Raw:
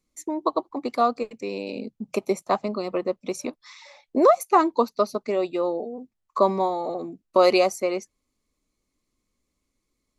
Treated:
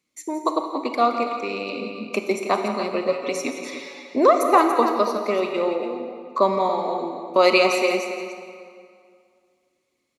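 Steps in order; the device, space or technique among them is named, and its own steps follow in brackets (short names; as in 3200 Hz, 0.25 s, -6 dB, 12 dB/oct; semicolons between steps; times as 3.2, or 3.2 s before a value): stadium PA (HPF 140 Hz 12 dB/oct; bell 2500 Hz +8 dB 1.3 oct; loudspeakers at several distances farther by 58 m -12 dB, 98 m -10 dB; reverb RT60 2.2 s, pre-delay 29 ms, DRR 6 dB); 3.08–4.16 comb 7.1 ms, depth 81%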